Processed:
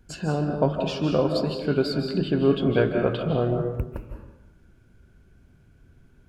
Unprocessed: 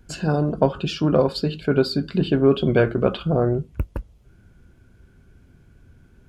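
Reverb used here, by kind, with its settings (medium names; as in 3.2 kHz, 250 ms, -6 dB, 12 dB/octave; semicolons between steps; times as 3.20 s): algorithmic reverb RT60 0.93 s, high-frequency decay 0.75×, pre-delay 120 ms, DRR 4 dB; trim -4.5 dB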